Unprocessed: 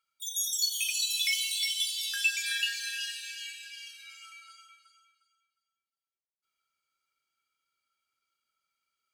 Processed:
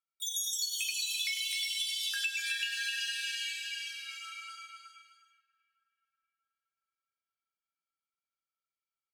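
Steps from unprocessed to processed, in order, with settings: high shelf 4000 Hz -6.5 dB; gate with hold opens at -60 dBFS; loudspeakers at several distances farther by 34 m -8 dB, 88 m -7 dB; compressor 6:1, threshold -38 dBFS, peak gain reduction 13.5 dB; darkening echo 0.641 s, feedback 60%, low-pass 1400 Hz, level -23 dB; gain +6.5 dB

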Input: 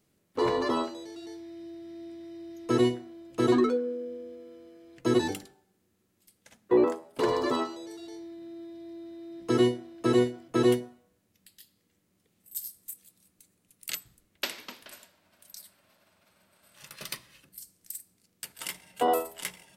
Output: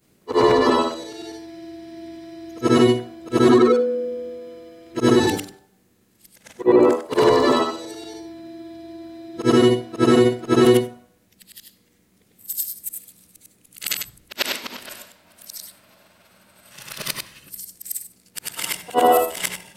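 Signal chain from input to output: short-time reversal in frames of 0.199 s; maximiser +18.5 dB; gain -4 dB

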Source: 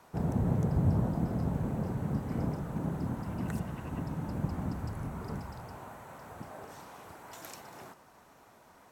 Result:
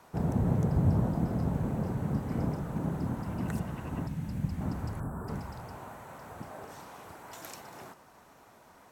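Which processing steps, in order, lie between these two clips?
4.07–4.61 band shelf 650 Hz -9.5 dB 2.6 oct; 5–5.28 spectral gain 1800–7300 Hz -19 dB; gain +1.5 dB

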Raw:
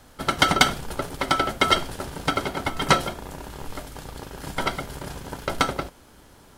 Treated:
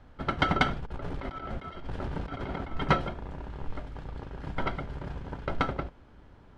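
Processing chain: LPF 2500 Hz 12 dB/oct; low shelf 160 Hz +9 dB; 0.78–2.72 negative-ratio compressor -30 dBFS, ratio -1; gain -6.5 dB

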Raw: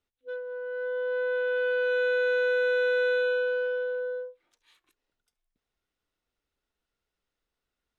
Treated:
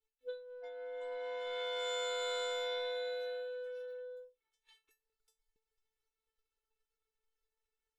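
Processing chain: echoes that change speed 0.433 s, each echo +6 st, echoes 3; transient shaper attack +12 dB, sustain -7 dB; resonator 440 Hz, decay 0.21 s, harmonics all, mix 100%; gain +7 dB

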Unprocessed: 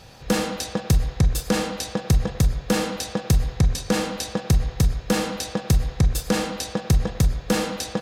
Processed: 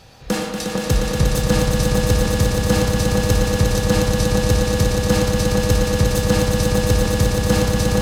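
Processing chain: swelling echo 0.119 s, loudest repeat 5, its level -5 dB

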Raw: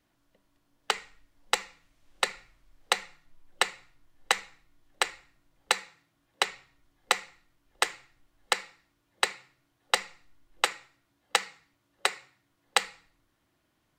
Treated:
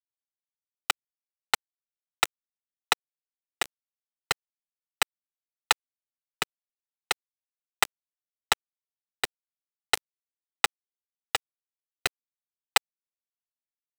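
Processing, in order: rattling part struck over -52 dBFS, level -18 dBFS; vibrato 0.75 Hz 28 cents; notch comb 550 Hz; sample gate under -21 dBFS; rotary speaker horn 7.5 Hz; gain +4.5 dB

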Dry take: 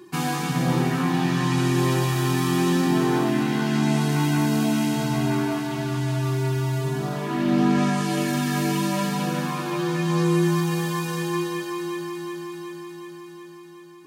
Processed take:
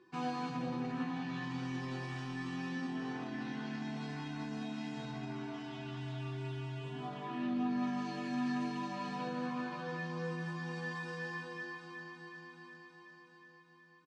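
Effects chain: Bessel low-pass 3900 Hz, order 4; notches 50/100/150/200/250/300/350 Hz; limiter -18 dBFS, peak gain reduction 6.5 dB; resonator 250 Hz, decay 0.43 s, harmonics all, mix 90%; feedback echo 1.022 s, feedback 56%, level -24 dB; gain +1 dB

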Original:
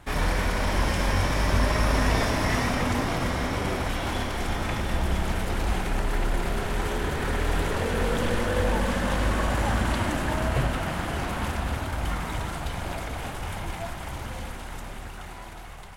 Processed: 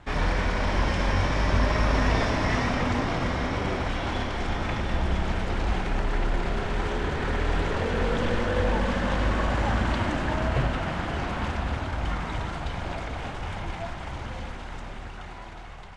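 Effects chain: Bessel low-pass 4900 Hz, order 4

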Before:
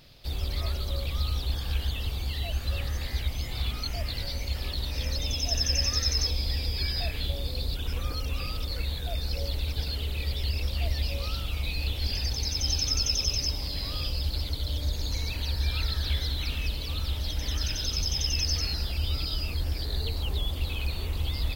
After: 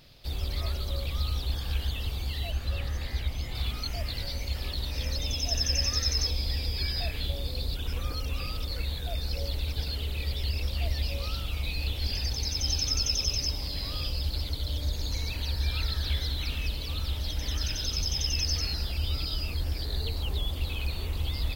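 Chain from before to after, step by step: 2.51–3.55 high shelf 5000 Hz -5.5 dB; gain -1 dB

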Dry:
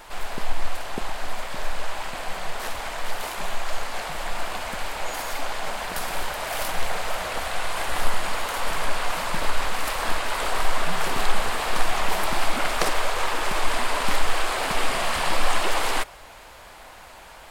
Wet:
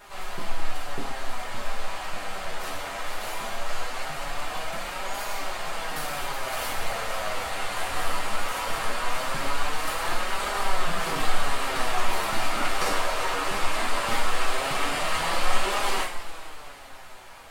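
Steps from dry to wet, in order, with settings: two-slope reverb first 0.44 s, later 3.7 s, from -18 dB, DRR -4.5 dB; flange 0.19 Hz, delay 4.8 ms, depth 6.1 ms, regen +45%; gain -3.5 dB

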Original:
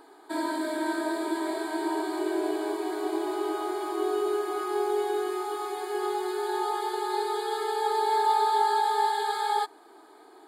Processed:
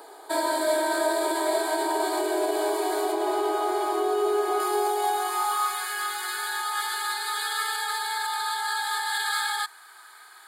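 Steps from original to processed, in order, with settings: high shelf 4200 Hz +10.5 dB, from 3.12 s +3.5 dB, from 4.6 s +12 dB; limiter -21.5 dBFS, peak gain reduction 8.5 dB; high-pass sweep 530 Hz -> 1500 Hz, 4.77–5.91; gain +4 dB

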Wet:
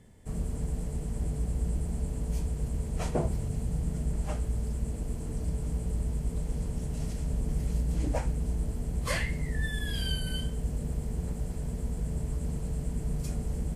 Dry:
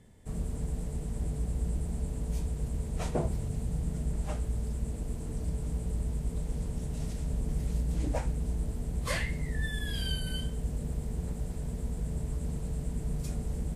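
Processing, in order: notch 3700 Hz, Q 15; gain +1.5 dB

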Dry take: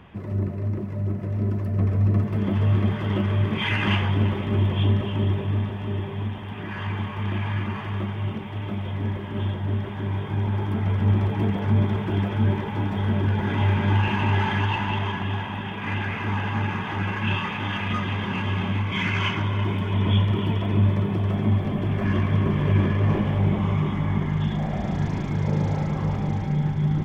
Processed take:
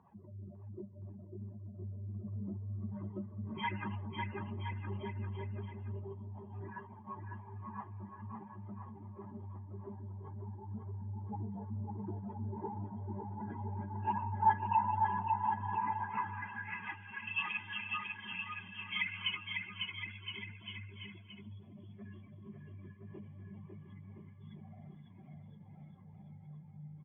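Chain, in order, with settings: spectral contrast raised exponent 2.4; bouncing-ball echo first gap 0.55 s, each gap 0.85×, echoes 5; band-pass sweep 900 Hz -> 2900 Hz, 16.02–17.03; gain +3.5 dB

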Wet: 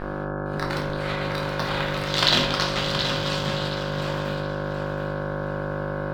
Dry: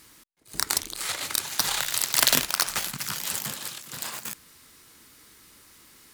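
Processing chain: G.711 law mismatch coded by mu; 2.06–3.67 band shelf 5000 Hz +10 dB; buzz 50 Hz, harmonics 35, -35 dBFS -2 dB/oct; air absorption 360 m; thinning echo 0.722 s, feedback 29%, level -8 dB; shoebox room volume 130 m³, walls mixed, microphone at 0.95 m; gain +1.5 dB

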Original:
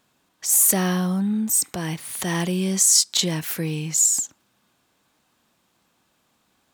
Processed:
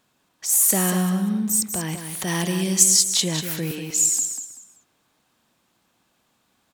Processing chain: 2.27–2.84 high shelf 4500 Hz +7.5 dB; 3.71–4.22 steep high-pass 220 Hz 48 dB/oct; feedback echo 0.192 s, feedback 27%, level -8 dB; gain -1 dB

